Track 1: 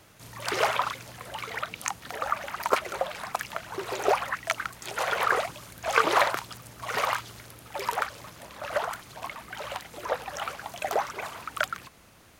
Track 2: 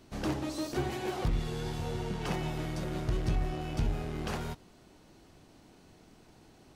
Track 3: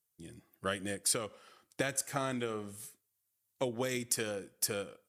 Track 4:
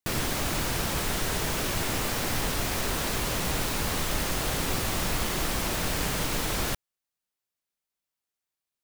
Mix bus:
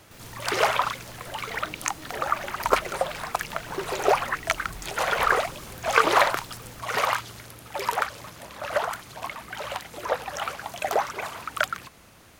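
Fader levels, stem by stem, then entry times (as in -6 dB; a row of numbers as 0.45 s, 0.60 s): +3.0 dB, -13.0 dB, -15.5 dB, -20.0 dB; 0.00 s, 1.40 s, 1.90 s, 0.05 s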